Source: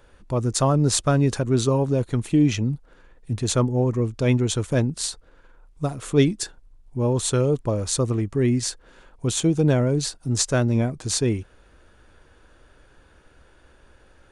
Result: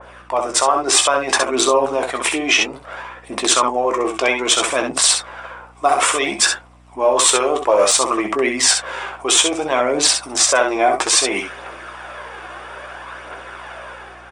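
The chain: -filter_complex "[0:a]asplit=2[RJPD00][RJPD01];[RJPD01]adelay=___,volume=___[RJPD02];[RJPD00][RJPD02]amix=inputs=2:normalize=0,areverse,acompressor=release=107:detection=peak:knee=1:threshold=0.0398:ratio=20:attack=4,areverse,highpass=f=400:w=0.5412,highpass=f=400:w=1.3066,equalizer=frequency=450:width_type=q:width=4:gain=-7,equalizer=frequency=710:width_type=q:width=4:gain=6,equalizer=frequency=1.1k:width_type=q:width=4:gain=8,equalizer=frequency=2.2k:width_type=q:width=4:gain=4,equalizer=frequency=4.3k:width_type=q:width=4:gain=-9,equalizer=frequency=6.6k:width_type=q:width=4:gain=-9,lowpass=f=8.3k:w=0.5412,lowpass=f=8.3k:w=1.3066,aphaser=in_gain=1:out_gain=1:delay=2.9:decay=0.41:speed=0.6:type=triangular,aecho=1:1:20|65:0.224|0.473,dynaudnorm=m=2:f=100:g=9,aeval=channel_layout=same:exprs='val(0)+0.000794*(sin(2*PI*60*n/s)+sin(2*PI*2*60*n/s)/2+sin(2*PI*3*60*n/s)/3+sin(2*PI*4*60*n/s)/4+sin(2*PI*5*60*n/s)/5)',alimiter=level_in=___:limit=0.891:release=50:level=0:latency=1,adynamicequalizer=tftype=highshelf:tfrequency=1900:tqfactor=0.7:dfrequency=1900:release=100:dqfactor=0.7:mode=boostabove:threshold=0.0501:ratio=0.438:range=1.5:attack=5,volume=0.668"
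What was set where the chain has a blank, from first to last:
15, 0.376, 8.41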